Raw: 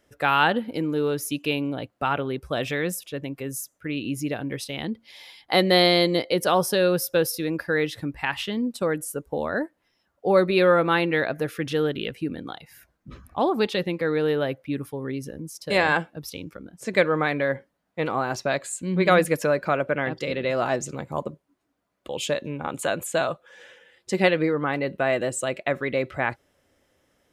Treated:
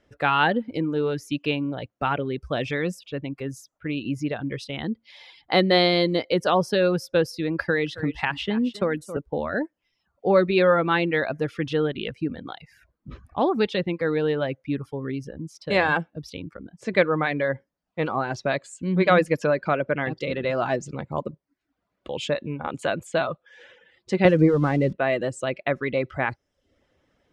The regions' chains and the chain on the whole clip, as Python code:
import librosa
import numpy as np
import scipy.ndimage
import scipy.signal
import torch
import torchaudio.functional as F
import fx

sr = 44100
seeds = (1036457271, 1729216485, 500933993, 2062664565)

y = fx.chain(x, sr, fx.echo_single(ms=269, db=-15.0),
    fx.band_squash(depth_pct=70), at=(7.59, 9.17))
y = fx.chain(y, sr, fx.crossing_spikes(level_db=-24.0),
    fx.tilt_eq(slope=-3.5), at=(24.25, 24.93))
y = scipy.signal.sosfilt(scipy.signal.butter(2, 4700.0, 'lowpass', fs=sr, output='sos'), y)
y = fx.dereverb_blind(y, sr, rt60_s=0.52)
y = fx.low_shelf(y, sr, hz=200.0, db=4.5)